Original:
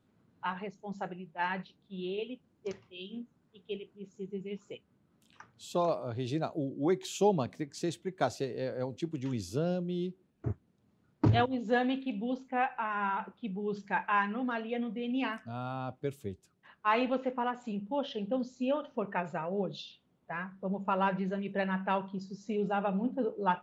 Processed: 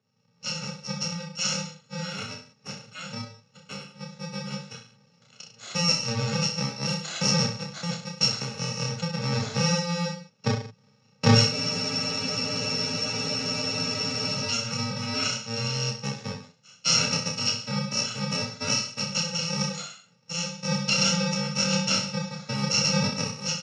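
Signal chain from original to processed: bit-reversed sample order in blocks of 128 samples; level rider gain up to 13 dB; Chebyshev band-pass 110–6700 Hz, order 5; peaking EQ 410 Hz +4 dB 0.51 oct; on a send: reverse bouncing-ball echo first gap 30 ms, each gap 1.1×, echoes 5; on the sum: spectral freeze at 11.53 s, 2.83 s; trim -1.5 dB

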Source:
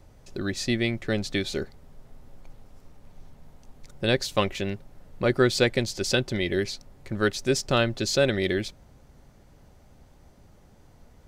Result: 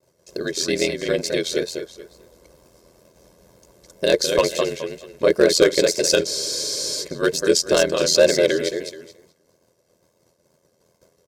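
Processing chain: on a send: feedback delay 214 ms, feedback 28%, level -6 dB; on the sum: expander -44 dBFS; wow and flutter 100 cents; ring modulator 42 Hz; high-pass 320 Hz 12 dB/octave; comb 1.9 ms, depth 55%; in parallel at -4 dB: wavefolder -15.5 dBFS; on the sum: high-order bell 1.6 kHz -8 dB 2.7 oct; band-stop 460 Hz, Q 15; spectral freeze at 6.30 s, 0.73 s; trim +7.5 dB

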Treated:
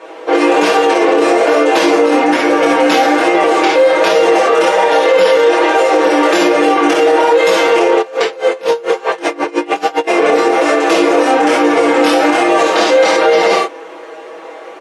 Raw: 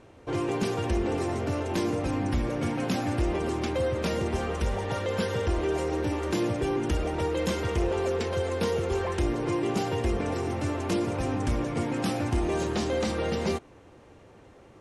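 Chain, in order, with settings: high-pass 410 Hz 24 dB/octave; treble shelf 6 kHz -8 dB; early reflections 27 ms -5 dB, 57 ms -5.5 dB, 68 ms -4.5 dB; chorus 1.2 Hz, delay 17.5 ms, depth 6.1 ms; peaking EQ 7.9 kHz -3.5 dB 1.9 oct; comb 6.2 ms, depth 92%; loudness maximiser +24.5 dB; 8.01–10.07 s: logarithmic tremolo 3.4 Hz -> 8.5 Hz, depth 23 dB; trim -1 dB

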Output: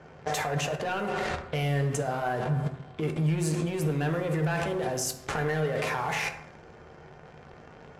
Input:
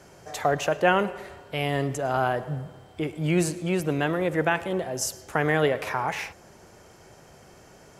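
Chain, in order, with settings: waveshaping leveller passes 3; compression 20:1, threshold -26 dBFS, peak gain reduction 17 dB; level-controlled noise filter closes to 2.3 kHz, open at -26 dBFS; level held to a coarse grid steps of 20 dB; reverberation RT60 0.85 s, pre-delay 3 ms, DRR 3.5 dB; trim +8.5 dB

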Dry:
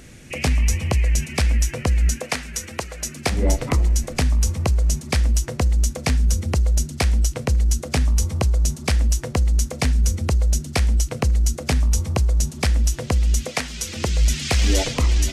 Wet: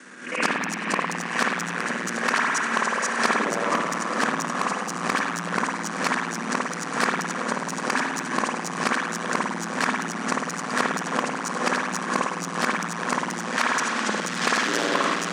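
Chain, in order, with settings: time reversed locally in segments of 53 ms; steep low-pass 10 kHz 96 dB/octave; high-order bell 1.3 kHz +13 dB 1.1 oct; on a send: echo that smears into a reverb 780 ms, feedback 62%, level -9 dB; on the sum: spring tank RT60 2.2 s, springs 52 ms, chirp 40 ms, DRR -2.5 dB; Chebyshev shaper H 5 -14 dB, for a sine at 0 dBFS; steep high-pass 190 Hz 48 dB/octave; swell ahead of each attack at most 99 dB/s; trim -8 dB

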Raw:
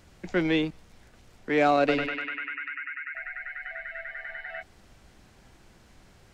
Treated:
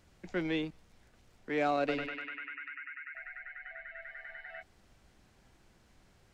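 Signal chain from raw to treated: 3.40–4.02 s: low-pass 3.8 kHz 12 dB/octave; trim -8.5 dB

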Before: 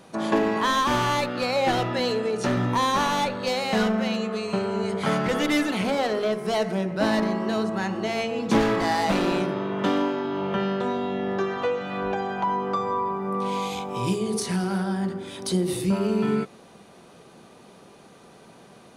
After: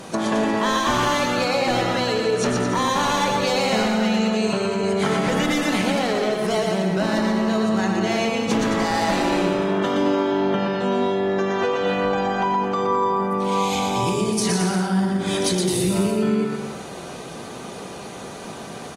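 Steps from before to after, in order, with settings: peaking EQ 6.9 kHz +4.5 dB 0.67 oct; in parallel at +3 dB: peak limiter -22 dBFS, peak gain reduction 10.5 dB; on the sum: compression 6:1, threshold -25 dBFS, peak gain reduction 12 dB; on a send: bouncing-ball echo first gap 120 ms, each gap 0.8×, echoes 5; on the sum: trim +4 dB; AAC 48 kbps 44.1 kHz

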